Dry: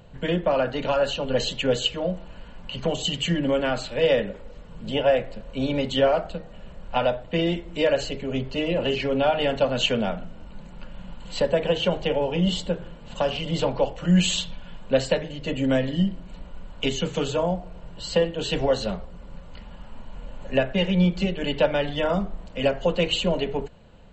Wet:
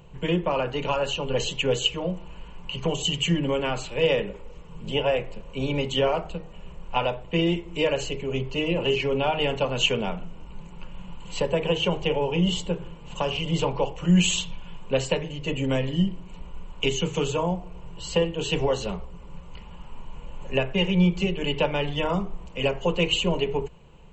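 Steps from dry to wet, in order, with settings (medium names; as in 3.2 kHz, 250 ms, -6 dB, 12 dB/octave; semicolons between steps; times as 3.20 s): rippled EQ curve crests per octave 0.73, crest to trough 9 dB; trim -1.5 dB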